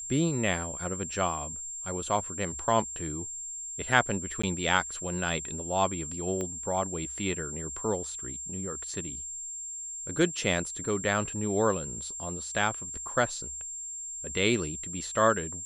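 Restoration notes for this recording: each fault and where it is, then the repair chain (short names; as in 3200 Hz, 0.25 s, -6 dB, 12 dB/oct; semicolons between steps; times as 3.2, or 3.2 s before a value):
tone 7400 Hz -36 dBFS
4.42–4.43 gap 15 ms
6.41 pop -21 dBFS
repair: de-click; notch 7400 Hz, Q 30; interpolate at 4.42, 15 ms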